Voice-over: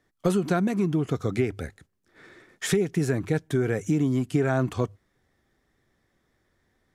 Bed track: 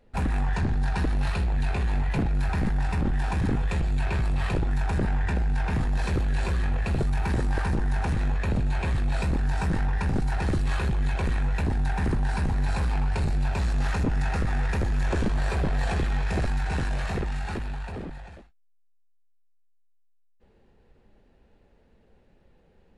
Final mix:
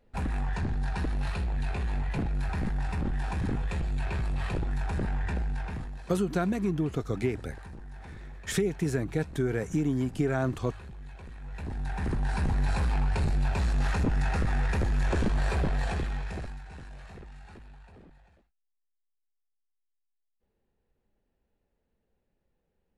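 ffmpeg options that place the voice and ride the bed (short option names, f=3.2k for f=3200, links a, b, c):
-filter_complex "[0:a]adelay=5850,volume=-4dB[a];[1:a]volume=12.5dB,afade=t=out:st=5.39:d=0.65:silence=0.199526,afade=t=in:st=11.39:d=1.12:silence=0.133352,afade=t=out:st=15.57:d=1.06:silence=0.158489[b];[a][b]amix=inputs=2:normalize=0"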